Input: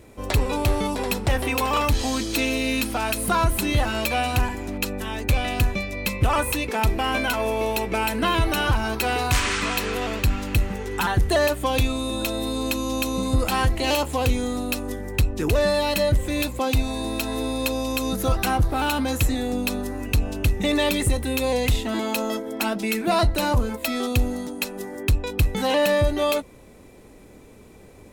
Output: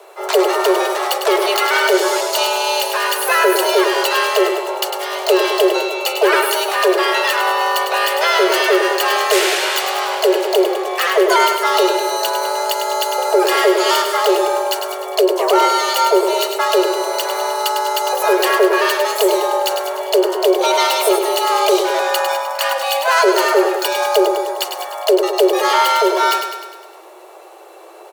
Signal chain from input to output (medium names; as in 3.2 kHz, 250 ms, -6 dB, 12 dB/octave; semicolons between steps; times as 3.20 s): frequency shift +330 Hz; harmony voices +7 st -4 dB; feedback delay 102 ms, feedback 56%, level -7 dB; trim +4.5 dB